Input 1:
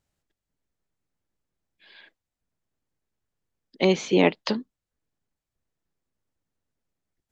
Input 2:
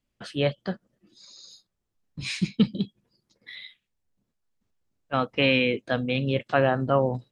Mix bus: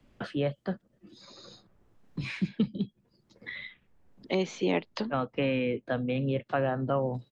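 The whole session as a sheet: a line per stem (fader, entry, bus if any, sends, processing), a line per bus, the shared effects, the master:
+2.5 dB, 0.50 s, no send, auto duck -10 dB, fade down 0.90 s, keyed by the second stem
-4.0 dB, 0.00 s, no send, LPF 1400 Hz 6 dB/oct; three-band squash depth 40%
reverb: off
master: three-band squash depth 40%

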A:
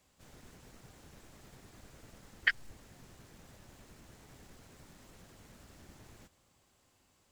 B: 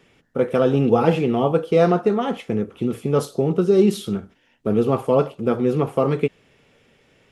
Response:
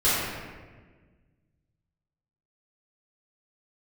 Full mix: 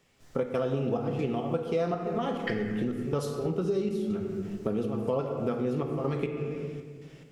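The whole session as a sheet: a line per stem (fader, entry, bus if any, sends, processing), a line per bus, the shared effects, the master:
-6.0 dB, 0.00 s, send -13 dB, dry
-0.5 dB, 0.00 s, send -20.5 dB, de-hum 99.29 Hz, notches 4; step gate "..xx.xxxx" 139 bpm -12 dB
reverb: on, RT60 1.5 s, pre-delay 3 ms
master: bell 5400 Hz +4 dB 0.77 oct; compressor 4:1, threshold -28 dBFS, peak gain reduction 15.5 dB

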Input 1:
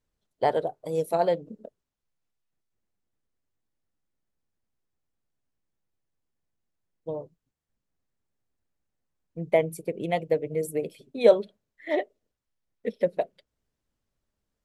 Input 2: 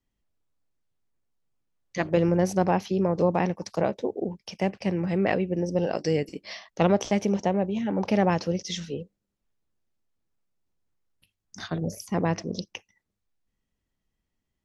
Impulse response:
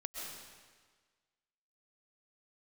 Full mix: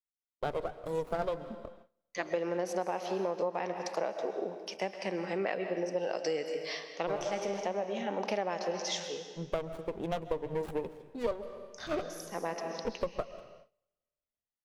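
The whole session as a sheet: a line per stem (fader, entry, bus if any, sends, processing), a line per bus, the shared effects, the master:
-13.5 dB, 0.00 s, send -13 dB, AGC gain up to 13.5 dB; running maximum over 17 samples
-5.0 dB, 0.20 s, send -4 dB, HPF 530 Hz 12 dB/oct; harmonic-percussive split harmonic +6 dB; auto duck -9 dB, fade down 0.30 s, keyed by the first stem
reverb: on, RT60 1.5 s, pre-delay 90 ms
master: gate with hold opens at -44 dBFS; compressor 6:1, threshold -29 dBFS, peak gain reduction 11 dB

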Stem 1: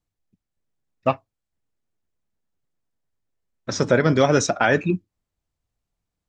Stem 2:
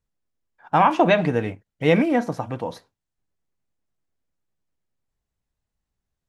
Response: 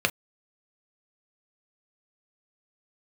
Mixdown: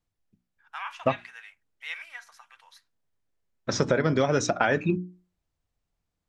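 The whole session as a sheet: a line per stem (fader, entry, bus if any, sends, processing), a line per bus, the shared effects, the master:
+0.5 dB, 0.00 s, no send, high shelf 8100 Hz -8.5 dB; notches 60/120/180/240/300/360 Hz
-8.5 dB, 0.00 s, no send, HPF 1400 Hz 24 dB/oct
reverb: off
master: compressor 6:1, threshold -19 dBFS, peak gain reduction 8 dB

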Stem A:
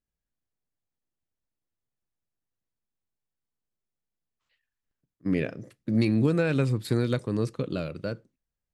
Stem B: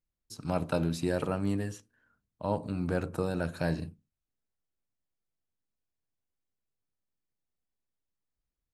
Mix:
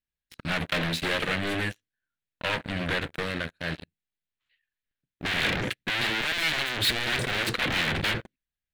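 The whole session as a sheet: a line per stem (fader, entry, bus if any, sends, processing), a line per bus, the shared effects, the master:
0.0 dB, 0.00 s, no send, limiter -21 dBFS, peak gain reduction 8.5 dB; low shelf 370 Hz +4 dB
2.85 s -9 dB -> 3.6 s -18 dB, 0.00 s, no send, limiter -19 dBFS, peak gain reduction 4.5 dB; upward expander 1.5:1, over -46 dBFS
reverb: off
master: sample leveller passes 5; wavefolder -24.5 dBFS; band shelf 2500 Hz +12 dB

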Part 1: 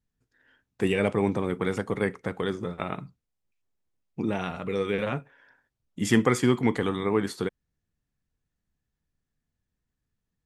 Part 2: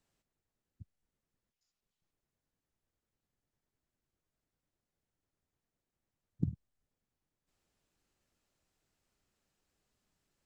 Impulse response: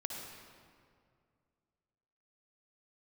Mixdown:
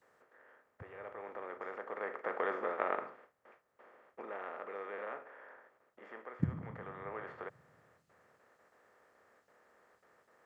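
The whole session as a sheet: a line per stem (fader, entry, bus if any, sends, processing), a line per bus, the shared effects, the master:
1.81 s -17 dB -> 2.41 s -7.5 dB -> 3.81 s -7.5 dB -> 4.29 s -16.5 dB, 0.00 s, no send, per-bin compression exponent 0.4; gate with hold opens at -34 dBFS; Chebyshev band-pass 560–1600 Hz, order 2; auto duck -9 dB, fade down 0.85 s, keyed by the second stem
-2.0 dB, 0.00 s, send -6 dB, dry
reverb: on, RT60 2.2 s, pre-delay 52 ms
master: HPF 81 Hz

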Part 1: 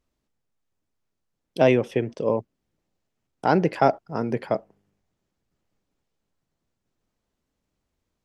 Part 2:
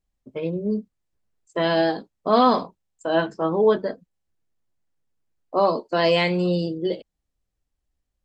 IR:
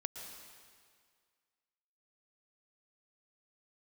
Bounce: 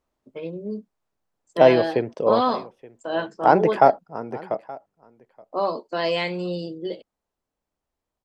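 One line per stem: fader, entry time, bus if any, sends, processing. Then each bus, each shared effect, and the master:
3.81 s -4.5 dB -> 4.11 s -11.5 dB, 0.00 s, no send, echo send -22 dB, bell 810 Hz +11 dB 2.2 oct
-4.0 dB, 0.00 s, no send, no echo send, low shelf 140 Hz -10.5 dB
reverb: off
echo: echo 0.874 s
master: dry

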